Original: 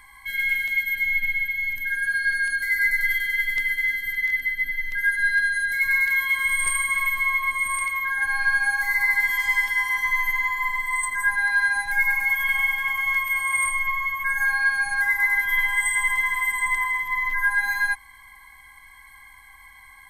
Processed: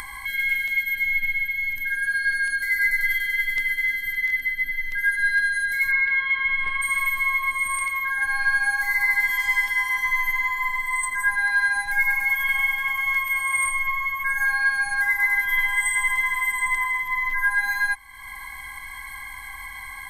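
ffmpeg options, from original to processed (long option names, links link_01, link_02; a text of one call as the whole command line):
ffmpeg -i in.wav -filter_complex "[0:a]asplit=3[link_01][link_02][link_03];[link_01]afade=type=out:start_time=5.9:duration=0.02[link_04];[link_02]lowpass=frequency=3500:width=0.5412,lowpass=frequency=3500:width=1.3066,afade=type=in:start_time=5.9:duration=0.02,afade=type=out:start_time=6.81:duration=0.02[link_05];[link_03]afade=type=in:start_time=6.81:duration=0.02[link_06];[link_04][link_05][link_06]amix=inputs=3:normalize=0,acompressor=mode=upward:threshold=-25dB:ratio=2.5" out.wav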